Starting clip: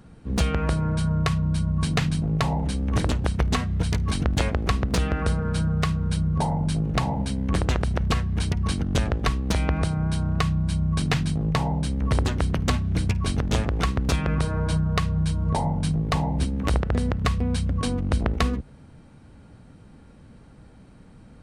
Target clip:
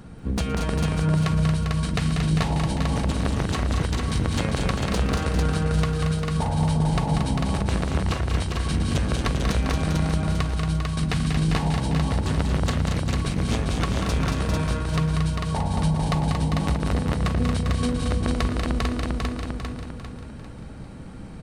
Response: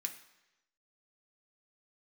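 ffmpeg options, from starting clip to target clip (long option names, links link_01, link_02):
-filter_complex "[0:a]asplit=2[link_01][link_02];[link_02]aecho=0:1:398|796|1194|1592|1990:0.422|0.186|0.0816|0.0359|0.0158[link_03];[link_01][link_03]amix=inputs=2:normalize=0,acompressor=threshold=-29dB:ratio=6,asplit=2[link_04][link_05];[link_05]aecho=0:1:43|117|190|229|447:0.106|0.133|0.531|0.531|0.668[link_06];[link_04][link_06]amix=inputs=2:normalize=0,volume=6dB"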